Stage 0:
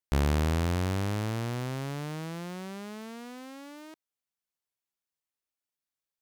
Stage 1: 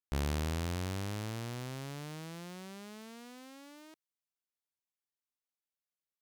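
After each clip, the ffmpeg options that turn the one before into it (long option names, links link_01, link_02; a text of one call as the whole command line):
ffmpeg -i in.wav -af "adynamicequalizer=threshold=0.00282:dfrequency=2400:dqfactor=0.7:tfrequency=2400:tqfactor=0.7:attack=5:release=100:ratio=0.375:range=2.5:mode=boostabove:tftype=highshelf,volume=-8dB" out.wav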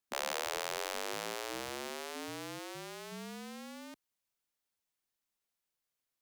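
ffmpeg -i in.wav -af "afreqshift=-42,afftfilt=real='re*lt(hypot(re,im),0.0316)':imag='im*lt(hypot(re,im),0.0316)':win_size=1024:overlap=0.75,volume=6dB" out.wav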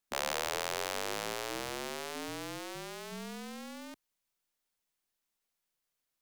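ffmpeg -i in.wav -af "aeval=exprs='if(lt(val(0),0),0.708*val(0),val(0))':channel_layout=same,volume=3.5dB" out.wav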